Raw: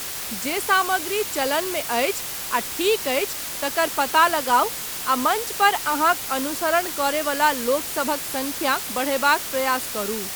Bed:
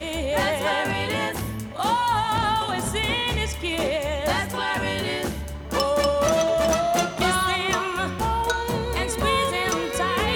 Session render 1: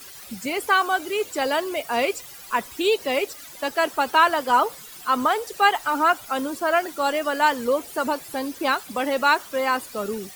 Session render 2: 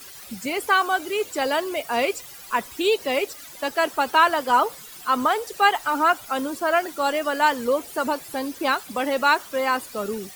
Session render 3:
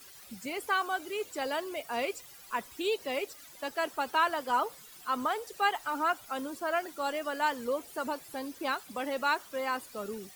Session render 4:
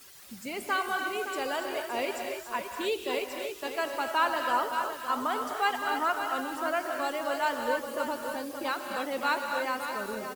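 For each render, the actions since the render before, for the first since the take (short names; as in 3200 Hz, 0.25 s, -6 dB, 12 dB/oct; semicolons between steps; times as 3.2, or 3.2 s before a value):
denoiser 15 dB, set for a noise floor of -31 dBFS
nothing audible
gain -10 dB
echo 0.567 s -9 dB; non-linear reverb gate 0.31 s rising, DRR 3.5 dB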